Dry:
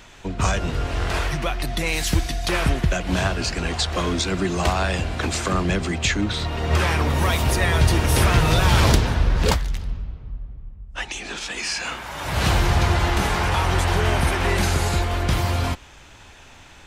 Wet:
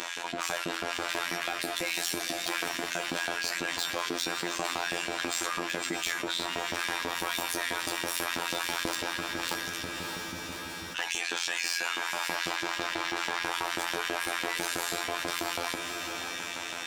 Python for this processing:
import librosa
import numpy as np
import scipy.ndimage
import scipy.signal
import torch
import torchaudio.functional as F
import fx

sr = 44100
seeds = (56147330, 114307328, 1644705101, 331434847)

p1 = fx.lowpass(x, sr, hz=5400.0, slope=12, at=(12.35, 13.44))
p2 = fx.rider(p1, sr, range_db=5, speed_s=0.5)
p3 = p1 + (p2 * librosa.db_to_amplitude(-3.0))
p4 = np.clip(p3, -10.0 ** (-18.5 / 20.0), 10.0 ** (-18.5 / 20.0))
p5 = fx.robotise(p4, sr, hz=86.0)
p6 = fx.filter_lfo_highpass(p5, sr, shape='saw_up', hz=6.1, low_hz=250.0, high_hz=3000.0, q=0.98)
p7 = fx.comb_fb(p6, sr, f0_hz=330.0, decay_s=0.39, harmonics='odd', damping=0.0, mix_pct=80)
p8 = p7 + fx.echo_diffused(p7, sr, ms=595, feedback_pct=41, wet_db=-13.5, dry=0)
p9 = fx.env_flatten(p8, sr, amount_pct=70)
y = p9 * librosa.db_to_amplitude(4.0)